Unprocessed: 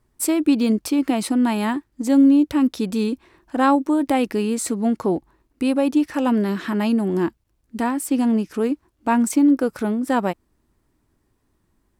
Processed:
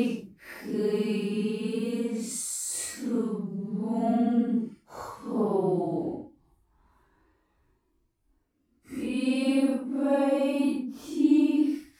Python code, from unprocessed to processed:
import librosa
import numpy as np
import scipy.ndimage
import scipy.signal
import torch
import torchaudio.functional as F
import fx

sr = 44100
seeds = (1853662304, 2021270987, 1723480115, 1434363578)

y = fx.paulstretch(x, sr, seeds[0], factor=6.5, window_s=0.05, from_s=4.23)
y = y * 10.0 ** (-7.0 / 20.0)